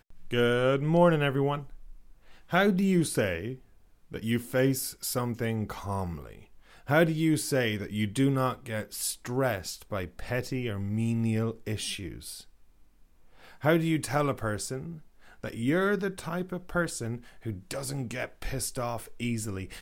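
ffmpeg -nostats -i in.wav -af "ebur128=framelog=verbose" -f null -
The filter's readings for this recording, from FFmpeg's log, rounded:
Integrated loudness:
  I:         -29.3 LUFS
  Threshold: -40.1 LUFS
Loudness range:
  LRA:         5.6 LU
  Threshold: -50.4 LUFS
  LRA low:   -33.1 LUFS
  LRA high:  -27.5 LUFS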